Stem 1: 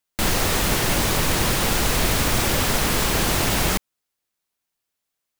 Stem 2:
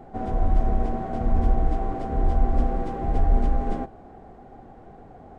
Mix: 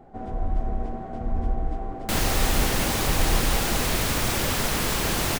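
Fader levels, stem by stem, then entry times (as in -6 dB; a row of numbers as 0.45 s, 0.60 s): -4.0 dB, -5.0 dB; 1.90 s, 0.00 s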